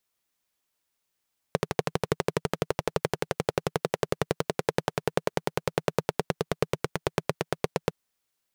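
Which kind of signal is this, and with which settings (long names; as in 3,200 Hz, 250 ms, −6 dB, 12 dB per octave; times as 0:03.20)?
pulse-train model of a single-cylinder engine, changing speed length 6.36 s, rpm 1,500, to 1,000, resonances 160/430 Hz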